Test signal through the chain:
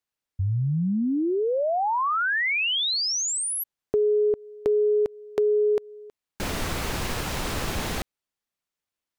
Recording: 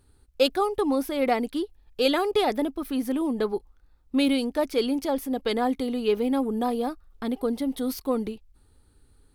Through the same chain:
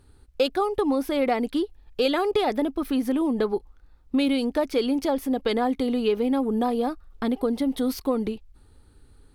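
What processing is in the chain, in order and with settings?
treble shelf 6.7 kHz -7 dB; compression 2.5:1, threshold -27 dBFS; trim +5.5 dB

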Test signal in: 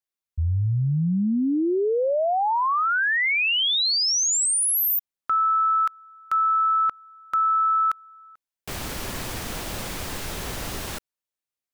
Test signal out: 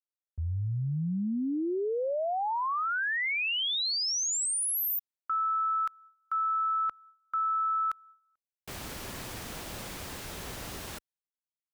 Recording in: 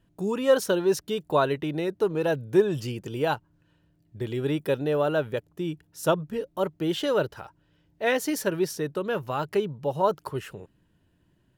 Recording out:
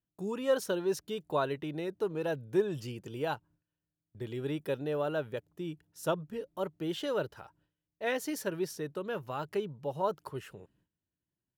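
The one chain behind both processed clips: high-pass 40 Hz 6 dB/octave; gate with hold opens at -40 dBFS, closes at -45 dBFS, hold 150 ms, range -17 dB; trim -8 dB

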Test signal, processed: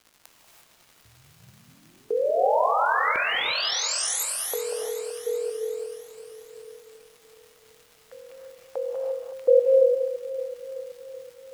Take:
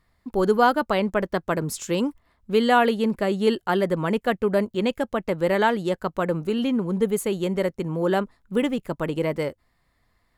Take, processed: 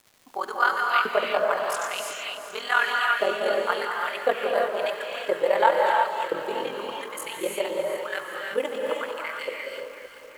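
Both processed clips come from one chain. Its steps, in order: ring modulator 21 Hz; LFO high-pass saw up 0.95 Hz 430–2900 Hz; crackle 280 per s -41 dBFS; echo whose repeats swap between lows and highs 189 ms, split 1.3 kHz, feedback 77%, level -9 dB; gated-style reverb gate 370 ms rising, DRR -0.5 dB; trim -2 dB

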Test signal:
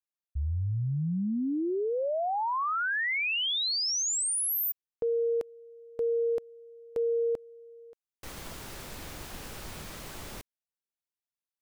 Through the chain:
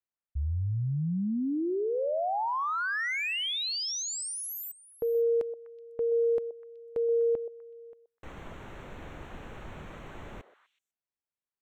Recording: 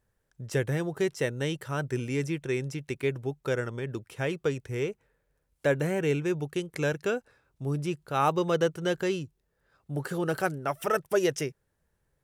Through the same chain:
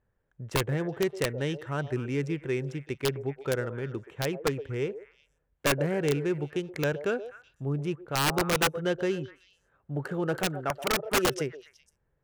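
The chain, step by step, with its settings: local Wiener filter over 9 samples; treble shelf 9 kHz -10.5 dB; on a send: repeats whose band climbs or falls 125 ms, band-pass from 560 Hz, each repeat 1.4 oct, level -9.5 dB; on the sum: integer overflow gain 18 dB

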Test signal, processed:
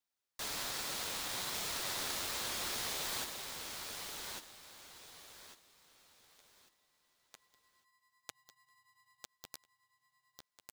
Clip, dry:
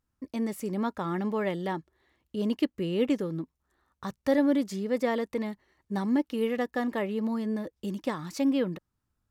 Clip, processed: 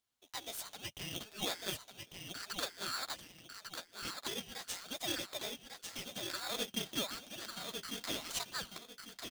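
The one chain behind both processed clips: compression, threshold -26 dBFS; inverse Chebyshev high-pass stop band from 340 Hz, stop band 80 dB; on a send: feedback delay 1148 ms, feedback 29%, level -5 dB; on the sum: flange 1.2 Hz, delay 5.3 ms, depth 8.5 ms, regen +3%; treble shelf 3.6 kHz -10.5 dB; polarity switched at an audio rate 1.5 kHz; trim +14 dB

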